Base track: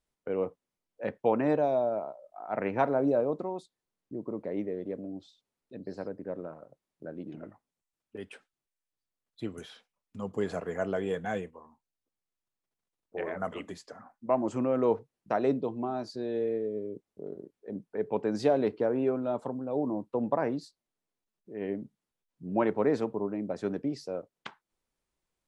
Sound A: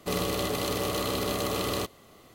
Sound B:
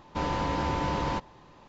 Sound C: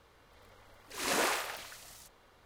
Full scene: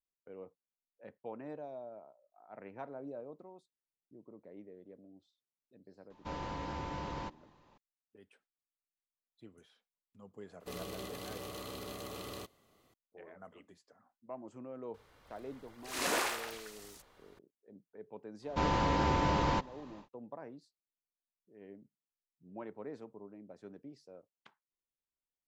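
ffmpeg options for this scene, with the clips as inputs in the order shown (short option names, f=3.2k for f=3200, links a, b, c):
-filter_complex "[2:a]asplit=2[a][b];[0:a]volume=-18.5dB[c];[a]atrim=end=1.68,asetpts=PTS-STARTPTS,volume=-11.5dB,afade=t=in:d=0.004:c=hsin,afade=t=out:st=1.676:d=0.004:c=hsin,adelay=269010S[d];[1:a]atrim=end=2.34,asetpts=PTS-STARTPTS,volume=-15dB,afade=t=in:d=0.004:c=hsin,afade=t=out:st=2.336:d=0.004:c=hsin,adelay=10600[e];[3:a]atrim=end=2.45,asetpts=PTS-STARTPTS,volume=-2dB,afade=t=in:d=0.004:c=hsin,afade=t=out:st=2.446:d=0.004:c=hsin,adelay=14940[f];[b]atrim=end=1.68,asetpts=PTS-STARTPTS,volume=-1dB,afade=t=in:d=0.1,afade=t=out:st=1.58:d=0.1,adelay=18410[g];[c][d][e][f][g]amix=inputs=5:normalize=0"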